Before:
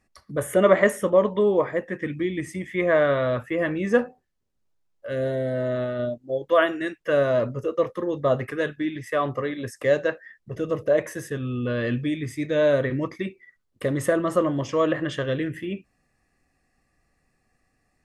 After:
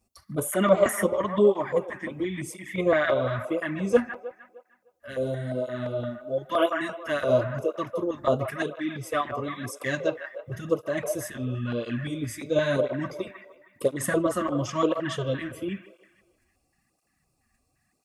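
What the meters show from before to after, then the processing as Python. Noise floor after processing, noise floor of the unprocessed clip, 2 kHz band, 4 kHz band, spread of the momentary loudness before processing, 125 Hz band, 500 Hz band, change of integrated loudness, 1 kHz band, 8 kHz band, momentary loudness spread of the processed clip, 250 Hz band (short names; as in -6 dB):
-73 dBFS, -71 dBFS, -3.0 dB, 0.0 dB, 11 LU, -2.0 dB, -3.5 dB, -3.0 dB, -1.0 dB, +4.0 dB, 12 LU, -2.5 dB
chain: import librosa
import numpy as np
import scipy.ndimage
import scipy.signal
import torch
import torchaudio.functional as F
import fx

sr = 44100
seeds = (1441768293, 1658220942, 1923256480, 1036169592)

p1 = fx.high_shelf(x, sr, hz=8600.0, db=11.5)
p2 = fx.level_steps(p1, sr, step_db=22)
p3 = p1 + (p2 * 10.0 ** (-2.5 / 20.0))
p4 = fx.echo_wet_bandpass(p3, sr, ms=154, feedback_pct=49, hz=1100.0, wet_db=-7.0)
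p5 = fx.filter_lfo_notch(p4, sr, shape='square', hz=2.9, low_hz=480.0, high_hz=1800.0, q=1.0)
y = fx.flanger_cancel(p5, sr, hz=0.97, depth_ms=7.3)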